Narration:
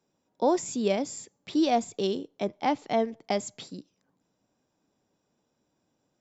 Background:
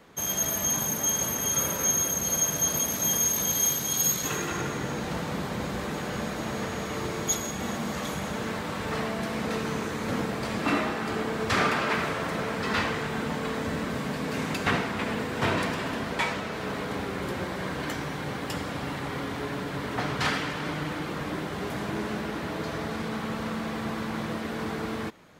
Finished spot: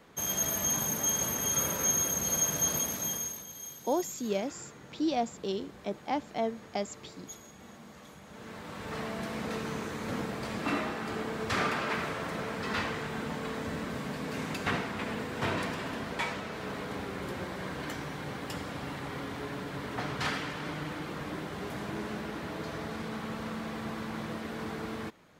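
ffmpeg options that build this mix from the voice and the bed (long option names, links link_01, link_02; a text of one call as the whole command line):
ffmpeg -i stem1.wav -i stem2.wav -filter_complex "[0:a]adelay=3450,volume=-5.5dB[link_01];[1:a]volume=10.5dB,afade=type=out:start_time=2.71:duration=0.74:silence=0.158489,afade=type=in:start_time=8.26:duration=0.9:silence=0.211349[link_02];[link_01][link_02]amix=inputs=2:normalize=0" out.wav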